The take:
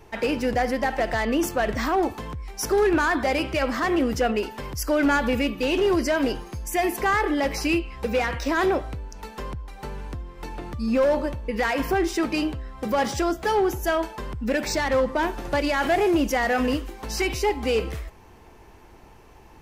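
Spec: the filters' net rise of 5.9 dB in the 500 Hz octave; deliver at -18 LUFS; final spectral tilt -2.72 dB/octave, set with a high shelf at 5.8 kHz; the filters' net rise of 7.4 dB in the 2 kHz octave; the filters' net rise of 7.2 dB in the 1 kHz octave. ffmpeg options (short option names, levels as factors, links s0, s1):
-af "equalizer=f=500:t=o:g=5.5,equalizer=f=1000:t=o:g=6,equalizer=f=2000:t=o:g=6.5,highshelf=f=5800:g=4,volume=1.06"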